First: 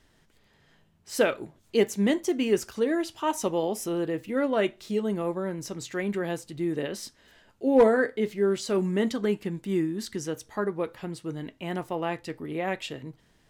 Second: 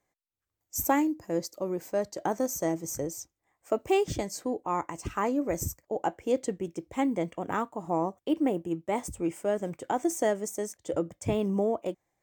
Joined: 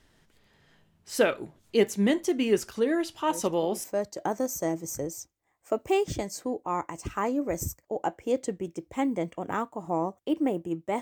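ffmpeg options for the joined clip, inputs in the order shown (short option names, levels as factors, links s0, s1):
-filter_complex "[1:a]asplit=2[s0][s1];[0:a]apad=whole_dur=11.01,atrim=end=11.01,atrim=end=3.842[s2];[s1]atrim=start=1.838:end=9.01[s3];[s0]atrim=start=1.2:end=1.84,asetpts=PTS-STARTPTS,volume=0.251,afade=t=in:d=0.004:c=hsin,afade=t=out:st=0.636:d=0.004:c=hsin,adelay=3200[s4];[s2][s3]acrossfade=d=0.004:c1=hsin:c2=hsin[s5];[s5][s4]amix=inputs=2:normalize=0"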